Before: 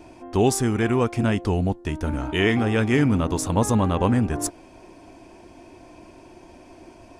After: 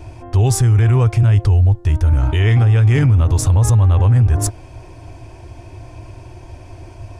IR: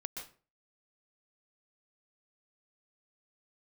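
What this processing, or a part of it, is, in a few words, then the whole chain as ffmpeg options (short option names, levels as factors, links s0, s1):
car stereo with a boomy subwoofer: -af "lowshelf=f=150:t=q:w=3:g=11,alimiter=limit=0.237:level=0:latency=1:release=26,volume=1.88"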